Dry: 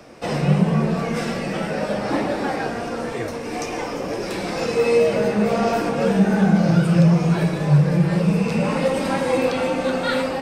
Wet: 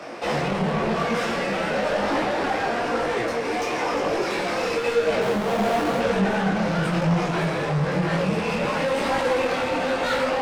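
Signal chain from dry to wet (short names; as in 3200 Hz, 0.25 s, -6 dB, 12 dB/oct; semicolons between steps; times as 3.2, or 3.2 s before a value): 5.21–6 half-waves squared off; overdrive pedal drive 29 dB, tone 2400 Hz, clips at -5.5 dBFS; detuned doubles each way 34 cents; gain -6.5 dB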